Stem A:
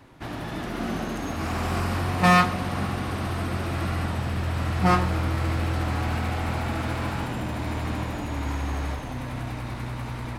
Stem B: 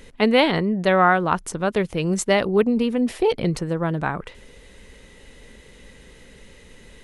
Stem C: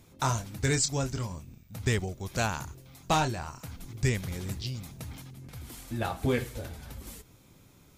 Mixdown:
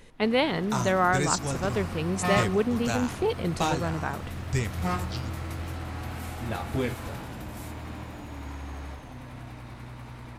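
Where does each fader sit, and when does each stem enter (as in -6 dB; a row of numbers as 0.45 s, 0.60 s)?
-9.5 dB, -7.0 dB, -1.5 dB; 0.00 s, 0.00 s, 0.50 s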